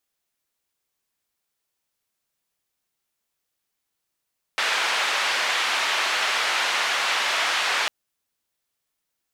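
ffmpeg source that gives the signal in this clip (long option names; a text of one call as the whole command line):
ffmpeg -f lavfi -i "anoisesrc=color=white:duration=3.3:sample_rate=44100:seed=1,highpass=frequency=810,lowpass=frequency=2900,volume=-8.9dB" out.wav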